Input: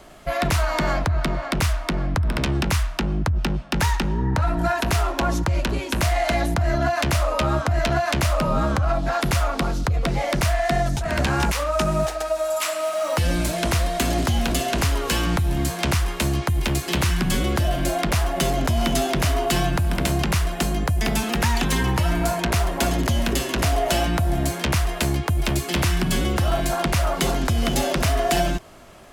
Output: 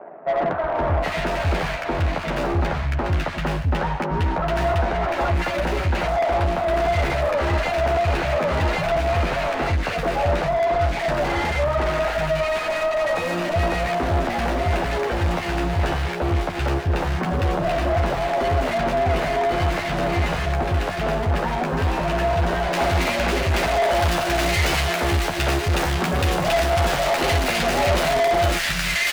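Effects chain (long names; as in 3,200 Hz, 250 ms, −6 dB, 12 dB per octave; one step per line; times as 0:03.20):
running median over 41 samples
parametric band 270 Hz −13 dB 1.8 octaves
double-tracking delay 12 ms −6 dB
three-band delay without the direct sound mids, lows, highs 370/760 ms, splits 170/1,500 Hz
mid-hump overdrive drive 27 dB, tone 1,300 Hz, clips at −13.5 dBFS, from 0:22.73 tone 4,000 Hz, from 0:23.90 tone 7,300 Hz
level +2 dB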